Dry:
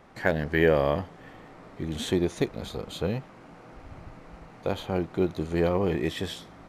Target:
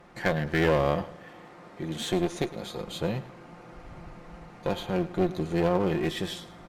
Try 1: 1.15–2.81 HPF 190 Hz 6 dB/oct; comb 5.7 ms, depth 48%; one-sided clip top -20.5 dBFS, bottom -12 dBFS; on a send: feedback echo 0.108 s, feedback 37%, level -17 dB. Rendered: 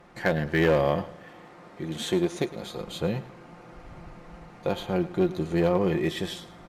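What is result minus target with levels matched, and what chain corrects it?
one-sided clip: distortion -8 dB
1.15–2.81 HPF 190 Hz 6 dB/oct; comb 5.7 ms, depth 48%; one-sided clip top -30 dBFS, bottom -12 dBFS; on a send: feedback echo 0.108 s, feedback 37%, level -17 dB

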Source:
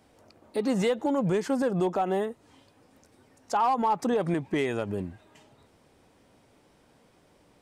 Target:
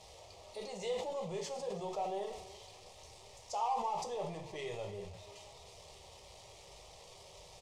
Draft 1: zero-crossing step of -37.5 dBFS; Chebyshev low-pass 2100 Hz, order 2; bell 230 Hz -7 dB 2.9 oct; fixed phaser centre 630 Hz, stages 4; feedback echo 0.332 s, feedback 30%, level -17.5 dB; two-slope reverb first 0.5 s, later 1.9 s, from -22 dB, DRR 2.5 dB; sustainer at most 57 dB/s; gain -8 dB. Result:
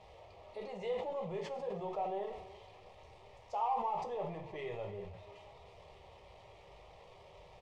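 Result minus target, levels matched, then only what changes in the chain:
8000 Hz band -17.5 dB
change: Chebyshev low-pass 6100 Hz, order 2

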